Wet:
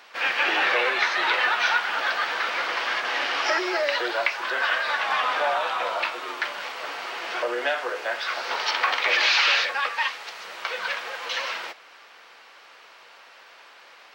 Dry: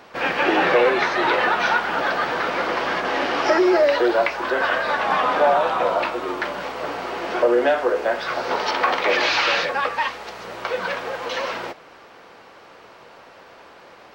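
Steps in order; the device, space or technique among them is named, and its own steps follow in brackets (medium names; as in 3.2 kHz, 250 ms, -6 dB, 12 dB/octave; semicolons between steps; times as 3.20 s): filter by subtraction (in parallel: low-pass 2.6 kHz 12 dB/octave + polarity flip)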